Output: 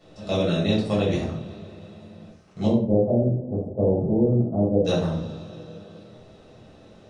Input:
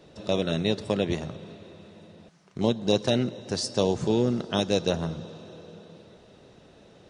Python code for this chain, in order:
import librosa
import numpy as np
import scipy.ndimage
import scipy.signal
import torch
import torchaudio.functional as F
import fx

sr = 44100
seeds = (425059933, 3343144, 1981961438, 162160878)

y = fx.cheby2_lowpass(x, sr, hz=1800.0, order=4, stop_db=50, at=(2.66, 4.84), fade=0.02)
y = fx.room_shoebox(y, sr, seeds[0], volume_m3=560.0, walls='furnished', distance_m=6.6)
y = y * 10.0 ** (-7.0 / 20.0)